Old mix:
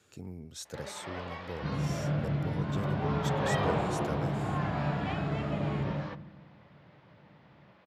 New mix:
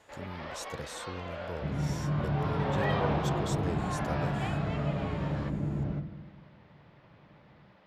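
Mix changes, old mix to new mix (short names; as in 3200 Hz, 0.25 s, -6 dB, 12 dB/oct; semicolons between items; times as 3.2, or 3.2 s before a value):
first sound: entry -0.65 s; master: remove HPF 77 Hz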